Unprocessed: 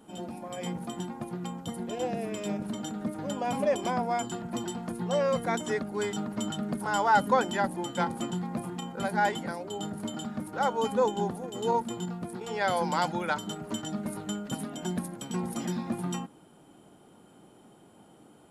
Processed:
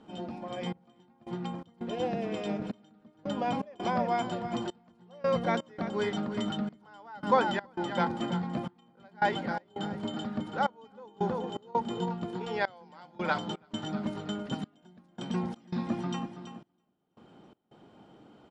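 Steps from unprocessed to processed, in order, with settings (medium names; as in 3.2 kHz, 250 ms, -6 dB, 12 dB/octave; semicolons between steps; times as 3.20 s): low-pass 5.2 kHz 24 dB/octave; feedback delay 328 ms, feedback 38%, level -11 dB; trance gate "xxxx...xx.x" 83 bpm -24 dB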